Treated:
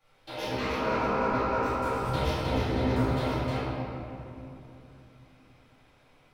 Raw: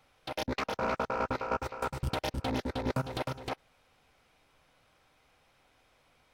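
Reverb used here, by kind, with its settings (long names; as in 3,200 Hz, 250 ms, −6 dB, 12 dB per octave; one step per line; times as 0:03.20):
rectangular room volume 120 cubic metres, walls hard, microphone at 2.4 metres
level −11 dB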